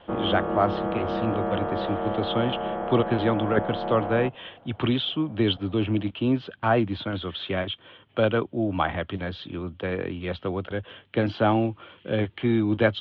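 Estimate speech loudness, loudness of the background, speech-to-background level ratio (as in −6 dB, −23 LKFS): −27.0 LKFS, −29.5 LKFS, 2.5 dB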